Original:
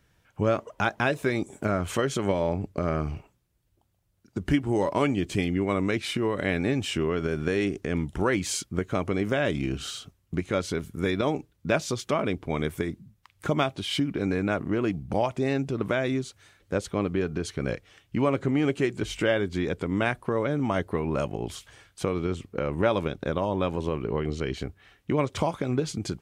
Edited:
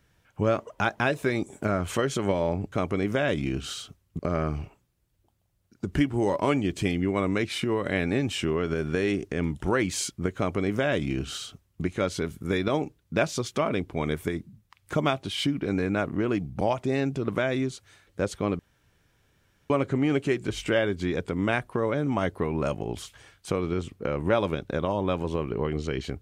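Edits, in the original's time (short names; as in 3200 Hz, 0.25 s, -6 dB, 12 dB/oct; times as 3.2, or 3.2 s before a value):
8.89–10.36 copy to 2.72
17.12–18.23 room tone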